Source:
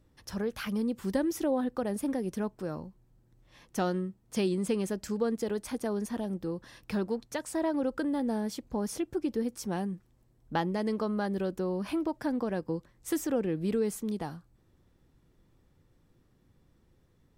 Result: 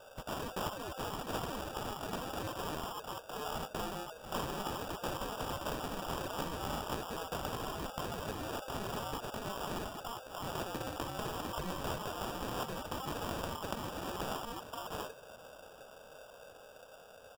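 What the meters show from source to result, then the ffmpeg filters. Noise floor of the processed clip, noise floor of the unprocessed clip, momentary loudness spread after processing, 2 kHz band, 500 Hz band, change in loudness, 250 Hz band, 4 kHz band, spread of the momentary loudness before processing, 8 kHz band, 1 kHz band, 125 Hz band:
−55 dBFS, −67 dBFS, 14 LU, −1.0 dB, −8.5 dB, −7.0 dB, −13.5 dB, +4.0 dB, 8 LU, −3.0 dB, +1.0 dB, −5.0 dB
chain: -filter_complex "[0:a]acompressor=threshold=-35dB:ratio=2.5,aresample=16000,asoftclip=type=hard:threshold=-39dB,aresample=44100,highpass=frequency=210:width_type=q:width=0.5412,highpass=frequency=210:width_type=q:width=1.307,lowpass=frequency=3000:width_type=q:width=0.5176,lowpass=frequency=3000:width_type=q:width=0.7071,lowpass=frequency=3000:width_type=q:width=1.932,afreqshift=280,dynaudnorm=framelen=520:gausssize=11:maxgain=3dB,asplit=2[link_01][link_02];[link_02]aecho=0:1:704:0.398[link_03];[link_01][link_03]amix=inputs=2:normalize=0,afftfilt=real='re*lt(hypot(re,im),0.0112)':imag='im*lt(hypot(re,im),0.0112)':win_size=1024:overlap=0.75,acrusher=samples=21:mix=1:aa=0.000001,asplit=2[link_04][link_05];[link_05]adelay=1574,volume=-23dB,highshelf=frequency=4000:gain=-35.4[link_06];[link_04][link_06]amix=inputs=2:normalize=0,volume=17dB"

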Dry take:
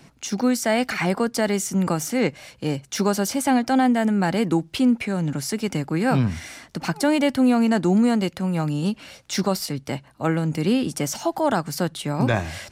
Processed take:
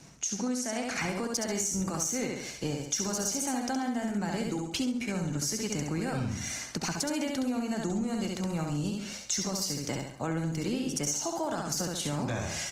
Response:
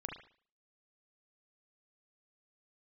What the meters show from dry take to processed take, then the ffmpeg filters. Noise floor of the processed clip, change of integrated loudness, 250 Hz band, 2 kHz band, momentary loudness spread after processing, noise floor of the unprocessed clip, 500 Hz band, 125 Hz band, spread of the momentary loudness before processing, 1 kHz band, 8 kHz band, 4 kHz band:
−43 dBFS, −9.0 dB, −11.0 dB, −9.5 dB, 4 LU, −53 dBFS, −11.0 dB, −9.5 dB, 9 LU, −11.0 dB, +1.0 dB, −4.5 dB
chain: -filter_complex "[0:a]alimiter=limit=-13.5dB:level=0:latency=1:release=58,equalizer=frequency=6400:width=2.3:gain=14.5,asplit=2[link_01][link_02];[link_02]aecho=0:1:68|136|204|272|340:0.668|0.261|0.102|0.0396|0.0155[link_03];[link_01][link_03]amix=inputs=2:normalize=0,acompressor=threshold=-26dB:ratio=5,volume=-3dB" -ar 48000 -c:a libopus -b:a 20k

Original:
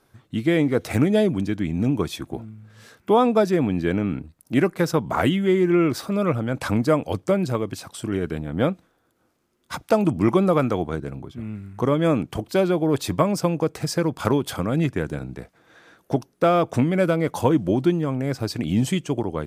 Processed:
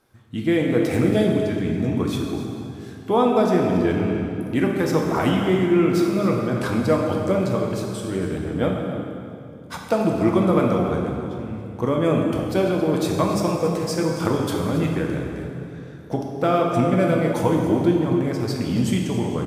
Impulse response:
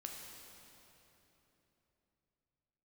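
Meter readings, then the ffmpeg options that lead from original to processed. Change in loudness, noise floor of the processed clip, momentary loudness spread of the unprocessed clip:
+1.0 dB, −38 dBFS, 13 LU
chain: -filter_complex "[0:a]aecho=1:1:276:0.211[link_01];[1:a]atrim=start_sample=2205,asetrate=61740,aresample=44100[link_02];[link_01][link_02]afir=irnorm=-1:irlink=0,volume=6dB"

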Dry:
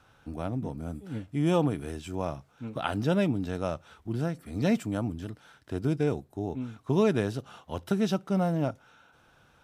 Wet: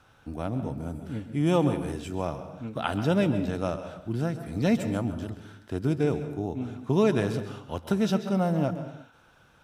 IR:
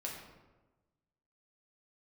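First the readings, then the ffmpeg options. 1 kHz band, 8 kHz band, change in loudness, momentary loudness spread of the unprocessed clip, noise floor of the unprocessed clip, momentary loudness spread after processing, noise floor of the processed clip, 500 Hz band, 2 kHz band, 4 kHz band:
+2.0 dB, +2.0 dB, +2.0 dB, 14 LU, −62 dBFS, 13 LU, −59 dBFS, +2.0 dB, +2.0 dB, +2.0 dB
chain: -filter_complex "[0:a]asplit=2[link_01][link_02];[1:a]atrim=start_sample=2205,afade=type=out:start_time=0.29:duration=0.01,atrim=end_sample=13230,adelay=131[link_03];[link_02][link_03]afir=irnorm=-1:irlink=0,volume=-9.5dB[link_04];[link_01][link_04]amix=inputs=2:normalize=0,volume=1.5dB"

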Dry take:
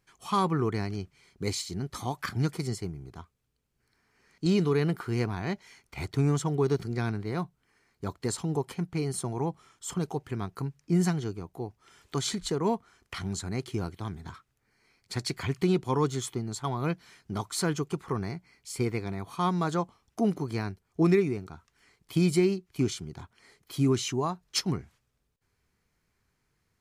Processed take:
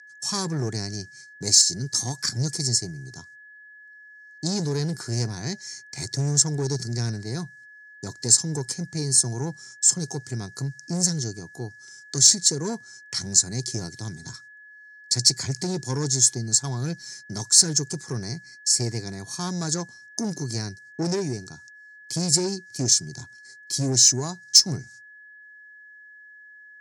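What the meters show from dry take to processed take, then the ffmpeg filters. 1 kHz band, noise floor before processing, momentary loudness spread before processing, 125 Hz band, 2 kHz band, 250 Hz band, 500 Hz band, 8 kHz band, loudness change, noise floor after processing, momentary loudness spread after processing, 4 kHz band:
−5.5 dB, −76 dBFS, 13 LU, +2.0 dB, +3.0 dB, −1.5 dB, −3.0 dB, +20.5 dB, +8.0 dB, −48 dBFS, 19 LU, +14.5 dB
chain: -af "agate=range=-25dB:threshold=-56dB:ratio=16:detection=peak,lowshelf=frequency=330:gain=10.5,aeval=exprs='val(0)+0.00501*sin(2*PI*1700*n/s)':channel_layout=same,asoftclip=type=tanh:threshold=-17.5dB,highpass=frequency=120:width=0.5412,highpass=frequency=120:width=1.3066,equalizer=frequency=120:width_type=q:width=4:gain=5,equalizer=frequency=190:width_type=q:width=4:gain=-4,equalizer=frequency=1200:width_type=q:width=4:gain=-6,equalizer=frequency=1700:width_type=q:width=4:gain=5,equalizer=frequency=5300:width_type=q:width=4:gain=5,lowpass=frequency=7500:width=0.5412,lowpass=frequency=7500:width=1.3066,aexciter=amount=14.1:drive=8.1:freq=4700,alimiter=level_in=-2.5dB:limit=-1dB:release=50:level=0:latency=1,volume=-1dB"

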